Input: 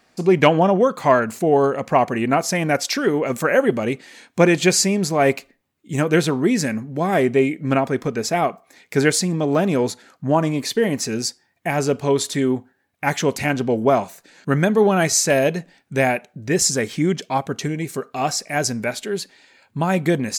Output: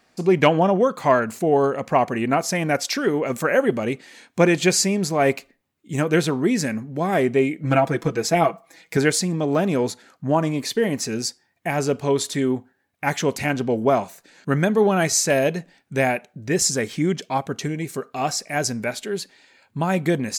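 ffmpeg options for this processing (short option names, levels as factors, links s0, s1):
-filter_complex "[0:a]asettb=1/sr,asplit=3[s0][s1][s2];[s0]atrim=end=7.634[s3];[s1]atrim=start=7.63:end=8.97,asetpts=PTS-STARTPTS,afade=t=in:d=0.004:c=qsin,afade=t=out:st=1.336:d=0.004:c=qsin,aecho=1:1:6.1:0.93,atrim=end_sample=59094[s4];[s2]atrim=start=8.966[s5];[s3][s4]acrossfade=d=0.004:c1=hsin:c2=qsin[s6];[s6][s5]acrossfade=d=0.004:c1=qsin:c2=hsin,volume=0.794"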